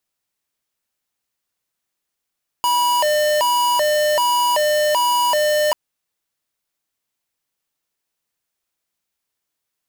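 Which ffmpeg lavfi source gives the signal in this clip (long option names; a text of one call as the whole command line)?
ffmpeg -f lavfi -i "aevalsrc='0.141*(2*lt(mod((787.5*t+185.5/1.3*(0.5-abs(mod(1.3*t,1)-0.5))),1),0.5)-1)':duration=3.09:sample_rate=44100" out.wav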